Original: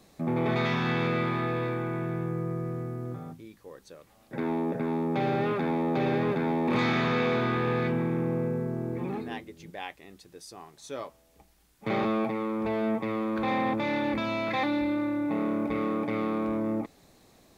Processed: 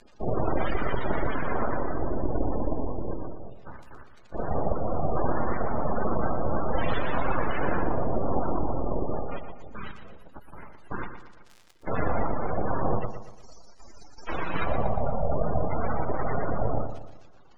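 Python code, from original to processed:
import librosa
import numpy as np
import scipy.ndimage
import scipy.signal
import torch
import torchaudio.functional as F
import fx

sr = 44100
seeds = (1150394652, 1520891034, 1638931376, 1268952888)

p1 = fx.steep_highpass(x, sr, hz=2800.0, slope=72, at=(13.04, 14.26), fade=0.02)
p2 = fx.noise_vocoder(p1, sr, seeds[0], bands=6)
p3 = fx.high_shelf(p2, sr, hz=5500.0, db=-10.5, at=(10.42, 11.94), fade=0.02)
p4 = fx.rider(p3, sr, range_db=3, speed_s=0.5)
p5 = p3 + (p4 * librosa.db_to_amplitude(-1.0))
p6 = fx.dmg_crackle(p5, sr, seeds[1], per_s=84.0, level_db=-35.0)
p7 = np.abs(p6)
p8 = fx.spec_gate(p7, sr, threshold_db=-25, keep='strong')
y = p8 + fx.echo_feedback(p8, sr, ms=119, feedback_pct=44, wet_db=-9.0, dry=0)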